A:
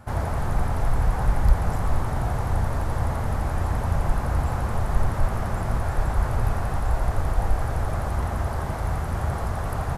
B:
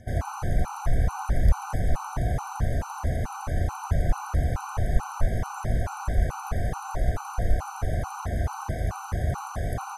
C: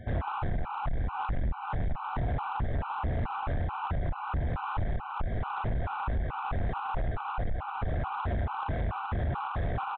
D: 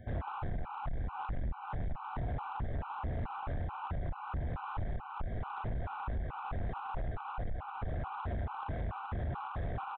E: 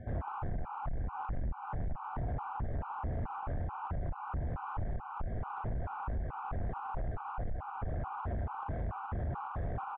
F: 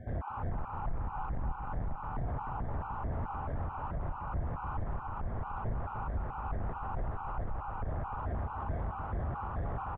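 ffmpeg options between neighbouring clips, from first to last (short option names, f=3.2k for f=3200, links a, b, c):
-af "aeval=exprs='val(0)+0.00355*sin(2*PI*6100*n/s)':c=same,afftfilt=real='re*gt(sin(2*PI*2.3*pts/sr)*(1-2*mod(floor(b*sr/1024/770),2)),0)':imag='im*gt(sin(2*PI*2.3*pts/sr)*(1-2*mod(floor(b*sr/1024/770),2)),0)':win_size=1024:overlap=0.75"
-af "acompressor=threshold=-25dB:ratio=4,aresample=8000,asoftclip=type=tanh:threshold=-28.5dB,aresample=44100,volume=3.5dB"
-filter_complex "[0:a]highshelf=f=3.3k:g=-9.5,acrossover=split=1800[a][b];[b]crystalizer=i=1.5:c=0[c];[a][c]amix=inputs=2:normalize=0,volume=-6dB"
-filter_complex "[0:a]lowpass=1.6k,asplit=2[a][b];[b]alimiter=level_in=18dB:limit=-24dB:level=0:latency=1:release=209,volume=-18dB,volume=0.5dB[c];[a][c]amix=inputs=2:normalize=0,volume=-2dB"
-af "aecho=1:1:302|604|906|1208:0.501|0.16|0.0513|0.0164"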